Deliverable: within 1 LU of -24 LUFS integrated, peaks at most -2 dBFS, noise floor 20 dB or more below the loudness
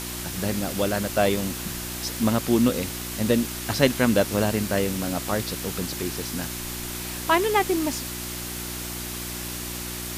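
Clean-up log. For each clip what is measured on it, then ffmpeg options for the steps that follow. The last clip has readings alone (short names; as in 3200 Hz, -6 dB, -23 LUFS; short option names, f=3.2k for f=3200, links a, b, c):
hum 60 Hz; harmonics up to 360 Hz; hum level -35 dBFS; noise floor -33 dBFS; noise floor target -46 dBFS; loudness -25.5 LUFS; peak -5.5 dBFS; loudness target -24.0 LUFS
-> -af "bandreject=f=60:t=h:w=4,bandreject=f=120:t=h:w=4,bandreject=f=180:t=h:w=4,bandreject=f=240:t=h:w=4,bandreject=f=300:t=h:w=4,bandreject=f=360:t=h:w=4"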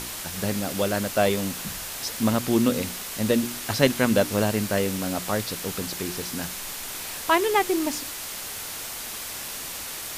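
hum none; noise floor -35 dBFS; noise floor target -46 dBFS
-> -af "afftdn=nr=11:nf=-35"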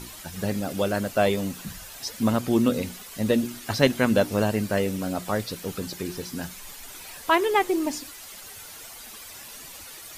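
noise floor -43 dBFS; noise floor target -46 dBFS
-> -af "afftdn=nr=6:nf=-43"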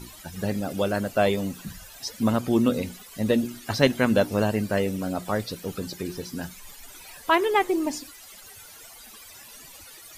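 noise floor -47 dBFS; loudness -25.5 LUFS; peak -5.5 dBFS; loudness target -24.0 LUFS
-> -af "volume=1.5dB"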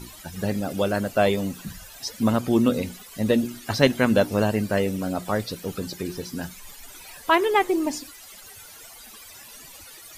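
loudness -24.0 LUFS; peak -4.0 dBFS; noise floor -45 dBFS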